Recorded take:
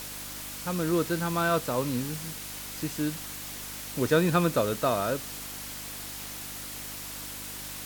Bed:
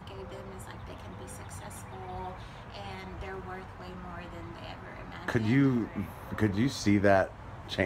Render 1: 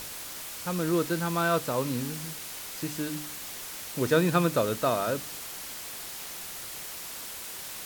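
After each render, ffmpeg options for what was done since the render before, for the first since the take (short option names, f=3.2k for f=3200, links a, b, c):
-af "bandreject=f=50:t=h:w=4,bandreject=f=100:t=h:w=4,bandreject=f=150:t=h:w=4,bandreject=f=200:t=h:w=4,bandreject=f=250:t=h:w=4,bandreject=f=300:t=h:w=4"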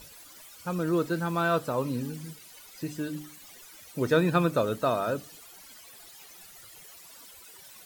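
-af "afftdn=nr=15:nf=-40"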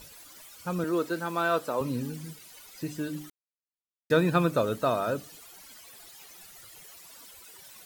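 -filter_complex "[0:a]asettb=1/sr,asplit=3[a][b][c];[a]atrim=end=0.844[d];[b]atrim=start=0.84:end=1.81,asetpts=PTS-STARTPTS,afade=t=in:d=0.004:c=qsin,afade=t=out:st=0.966:d=0.004:c=qsin,highpass=270[e];[c]atrim=start=1.806[f];[d][e]acrossfade=d=0.004:c1=hsin:c2=qsin[g];[g][f]acrossfade=d=0.004:c1=qsin:c2=hsin,asplit=3[h][i][j];[h]atrim=end=3.3,asetpts=PTS-STARTPTS,afade=t=out:st=3.296:d=0.004:c=hsin[k];[i]atrim=start=3.3:end=4.1,asetpts=PTS-STARTPTS,volume=0[l];[j]atrim=start=4.1,asetpts=PTS-STARTPTS,afade=t=in:d=0.004:c=hsin[m];[k][l][m]concat=n=3:v=0:a=1"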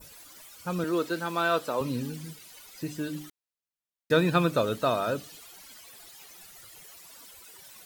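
-af "adynamicequalizer=threshold=0.00398:dfrequency=3500:dqfactor=0.97:tfrequency=3500:tqfactor=0.97:attack=5:release=100:ratio=0.375:range=2.5:mode=boostabove:tftype=bell"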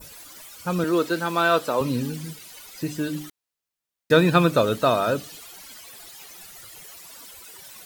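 -af "volume=6dB"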